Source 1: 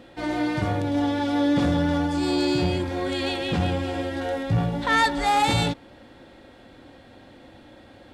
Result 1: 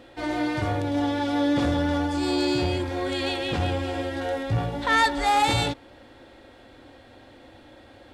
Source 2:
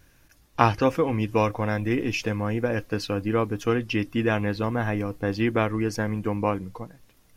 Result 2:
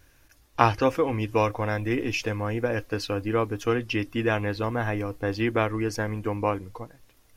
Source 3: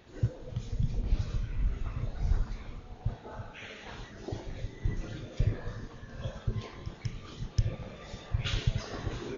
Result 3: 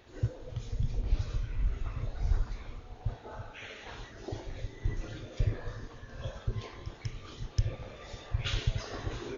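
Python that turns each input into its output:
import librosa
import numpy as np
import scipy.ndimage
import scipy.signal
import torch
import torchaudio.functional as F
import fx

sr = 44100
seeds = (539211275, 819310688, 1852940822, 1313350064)

y = fx.peak_eq(x, sr, hz=180.0, db=-10.5, octaves=0.57)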